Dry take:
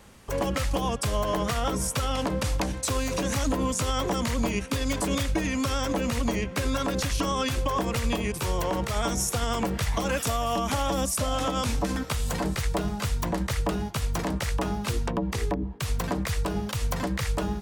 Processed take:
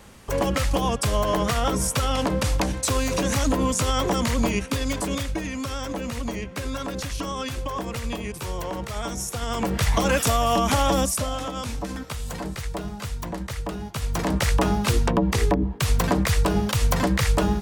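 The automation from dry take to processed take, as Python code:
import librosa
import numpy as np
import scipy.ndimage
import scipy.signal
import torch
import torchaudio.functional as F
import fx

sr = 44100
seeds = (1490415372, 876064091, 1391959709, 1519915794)

y = fx.gain(x, sr, db=fx.line((4.49, 4.0), (5.52, -3.0), (9.34, -3.0), (9.87, 6.0), (10.95, 6.0), (11.45, -3.5), (13.79, -3.5), (14.43, 7.0)))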